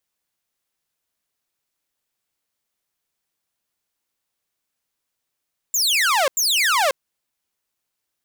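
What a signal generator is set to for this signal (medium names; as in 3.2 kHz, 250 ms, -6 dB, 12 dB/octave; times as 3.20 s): burst of laser zaps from 7.5 kHz, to 510 Hz, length 0.54 s saw, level -13 dB, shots 2, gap 0.09 s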